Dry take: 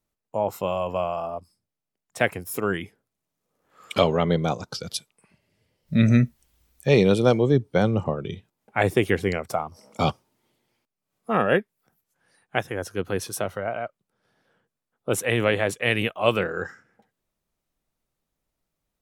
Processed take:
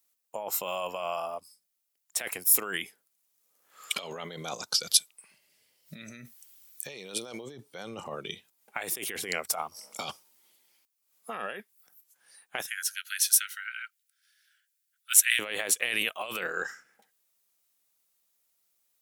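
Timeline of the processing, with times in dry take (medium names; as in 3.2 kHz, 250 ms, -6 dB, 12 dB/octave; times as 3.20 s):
12.66–15.39 s: steep high-pass 1.4 kHz 96 dB/octave
whole clip: peaking EQ 100 Hz -8.5 dB 0.43 oct; compressor with a negative ratio -27 dBFS, ratio -1; tilt EQ +4.5 dB/octave; trim -6.5 dB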